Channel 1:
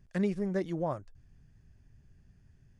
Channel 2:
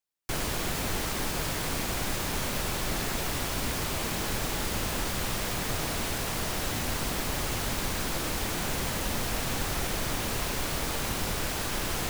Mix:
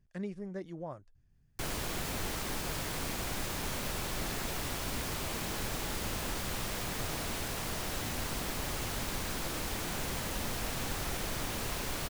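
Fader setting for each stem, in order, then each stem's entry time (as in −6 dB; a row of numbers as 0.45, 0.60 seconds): −9.0, −5.5 decibels; 0.00, 1.30 seconds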